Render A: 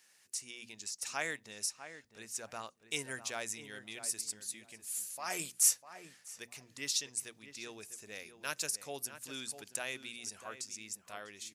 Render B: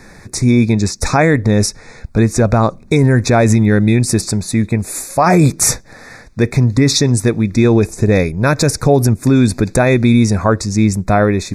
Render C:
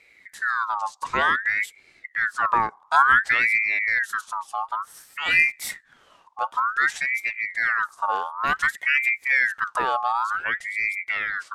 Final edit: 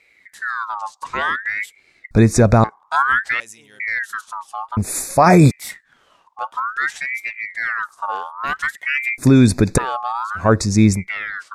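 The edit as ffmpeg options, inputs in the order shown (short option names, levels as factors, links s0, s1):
-filter_complex "[1:a]asplit=4[s0][s1][s2][s3];[2:a]asplit=6[s4][s5][s6][s7][s8][s9];[s4]atrim=end=2.112[s10];[s0]atrim=start=2.108:end=2.642[s11];[s5]atrim=start=2.638:end=3.402[s12];[0:a]atrim=start=3.398:end=3.802[s13];[s6]atrim=start=3.798:end=4.772[s14];[s1]atrim=start=4.768:end=5.512[s15];[s7]atrim=start=5.508:end=9.182[s16];[s2]atrim=start=9.178:end=9.782[s17];[s8]atrim=start=9.778:end=10.51[s18];[s3]atrim=start=10.35:end=11.08[s19];[s9]atrim=start=10.92[s20];[s10][s11]acrossfade=d=0.004:c1=hsin:c2=hsin[s21];[s21][s12]acrossfade=d=0.004:c1=hsin:c2=hsin[s22];[s22][s13]acrossfade=d=0.004:c1=hsin:c2=hsin[s23];[s23][s14]acrossfade=d=0.004:c1=hsin:c2=hsin[s24];[s24][s15]acrossfade=d=0.004:c1=hsin:c2=hsin[s25];[s25][s16]acrossfade=d=0.004:c1=hsin:c2=hsin[s26];[s26][s17]acrossfade=d=0.004:c1=hsin:c2=hsin[s27];[s27][s18]acrossfade=d=0.004:c1=hsin:c2=hsin[s28];[s28][s19]acrossfade=d=0.16:c1=tri:c2=tri[s29];[s29][s20]acrossfade=d=0.16:c1=tri:c2=tri"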